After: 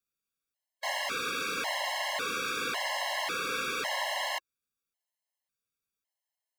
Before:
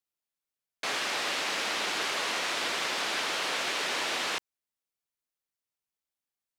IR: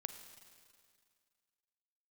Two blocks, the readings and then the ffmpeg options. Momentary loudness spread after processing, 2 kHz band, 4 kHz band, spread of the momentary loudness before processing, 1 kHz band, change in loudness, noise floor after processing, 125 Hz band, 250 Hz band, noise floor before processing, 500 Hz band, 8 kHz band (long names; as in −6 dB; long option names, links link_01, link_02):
2 LU, −1.5 dB, −3.5 dB, 2 LU, 0.0 dB, −2.0 dB, below −85 dBFS, +0.5 dB, −2.0 dB, below −85 dBFS, −0.5 dB, −3.5 dB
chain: -filter_complex "[0:a]equalizer=frequency=350:width_type=o:width=0.25:gain=-7,acrossover=split=2200[link_01][link_02];[link_02]asoftclip=type=hard:threshold=-38dB[link_03];[link_01][link_03]amix=inputs=2:normalize=0,afftfilt=real='re*gt(sin(2*PI*0.91*pts/sr)*(1-2*mod(floor(b*sr/1024/550),2)),0)':imag='im*gt(sin(2*PI*0.91*pts/sr)*(1-2*mod(floor(b*sr/1024/550),2)),0)':win_size=1024:overlap=0.75,volume=3.5dB"